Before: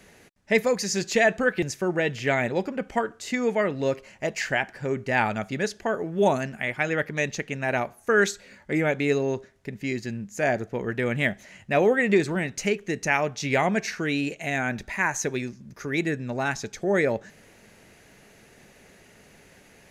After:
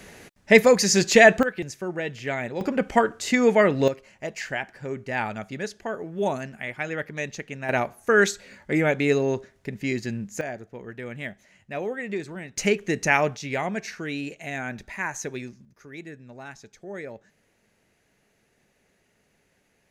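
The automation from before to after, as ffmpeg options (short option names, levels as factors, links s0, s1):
-af "asetnsamples=n=441:p=0,asendcmd='1.43 volume volume -5dB;2.61 volume volume 6dB;3.88 volume volume -4.5dB;7.69 volume volume 2dB;10.41 volume volume -10dB;12.57 volume volume 3dB;13.37 volume volume -5dB;15.65 volume volume -14dB',volume=2.24"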